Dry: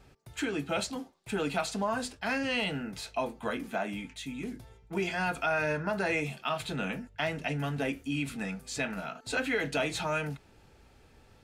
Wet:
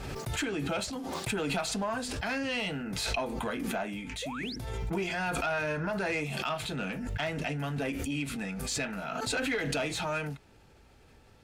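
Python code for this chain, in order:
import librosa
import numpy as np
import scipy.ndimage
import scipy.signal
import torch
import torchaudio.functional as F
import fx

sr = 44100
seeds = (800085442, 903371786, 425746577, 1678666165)

y = fx.spec_paint(x, sr, seeds[0], shape='rise', start_s=4.22, length_s=0.34, low_hz=450.0, high_hz=5900.0, level_db=-40.0)
y = fx.tube_stage(y, sr, drive_db=23.0, bias=0.25)
y = fx.pre_swell(y, sr, db_per_s=23.0)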